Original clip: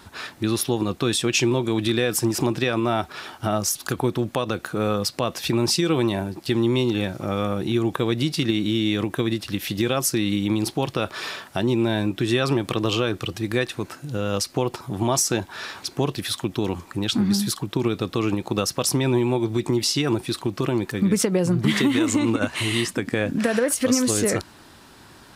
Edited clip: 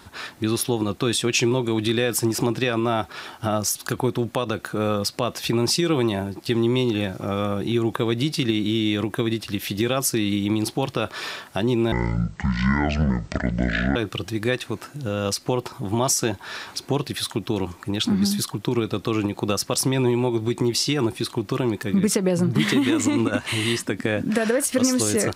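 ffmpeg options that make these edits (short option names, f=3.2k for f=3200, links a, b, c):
-filter_complex "[0:a]asplit=3[a][b][c];[a]atrim=end=11.924[d];[b]atrim=start=11.92:end=13.04,asetpts=PTS-STARTPTS,asetrate=24255,aresample=44100[e];[c]atrim=start=13.036[f];[d][e]acrossfade=d=0.004:c1=hsin:c2=hsin[g];[g][f]acrossfade=d=0.004:c1=hsin:c2=hsin"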